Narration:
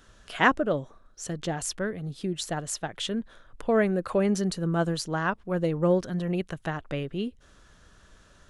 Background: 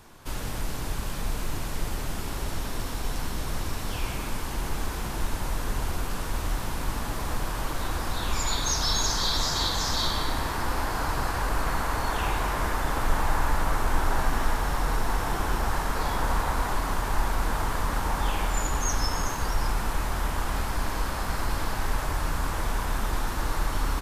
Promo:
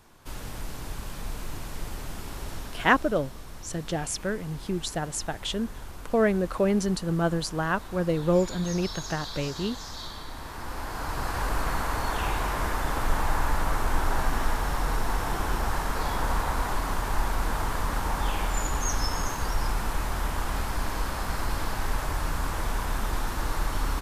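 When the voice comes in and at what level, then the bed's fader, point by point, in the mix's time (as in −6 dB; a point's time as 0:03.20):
2.45 s, +0.5 dB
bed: 0:02.53 −5 dB
0:03.28 −12 dB
0:10.28 −12 dB
0:11.41 −1 dB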